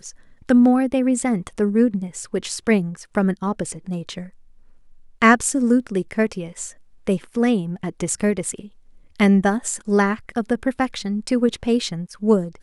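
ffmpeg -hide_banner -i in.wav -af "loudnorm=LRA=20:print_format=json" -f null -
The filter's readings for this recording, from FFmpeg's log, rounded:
"input_i" : "-21.0",
"input_tp" : "-2.5",
"input_lra" : "3.6",
"input_thresh" : "-31.5",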